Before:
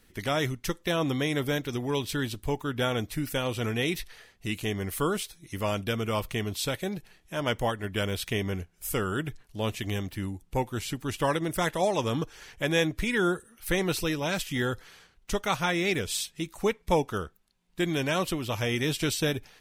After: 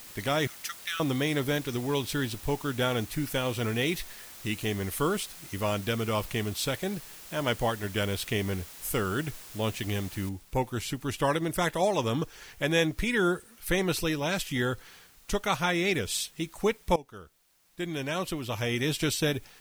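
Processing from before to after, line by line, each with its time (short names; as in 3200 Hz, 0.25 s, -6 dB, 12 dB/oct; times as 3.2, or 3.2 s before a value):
0.47–1 Chebyshev high-pass 1200 Hz, order 8
10.29 noise floor step -47 dB -59 dB
16.96–18.98 fade in, from -19 dB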